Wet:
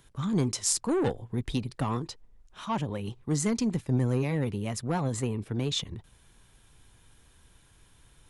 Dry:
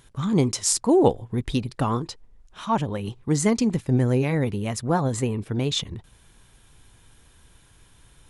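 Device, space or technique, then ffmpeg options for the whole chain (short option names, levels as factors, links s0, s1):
one-band saturation: -filter_complex "[0:a]acrossover=split=200|3100[s0][s1][s2];[s1]asoftclip=type=tanh:threshold=0.1[s3];[s0][s3][s2]amix=inputs=3:normalize=0,volume=0.596"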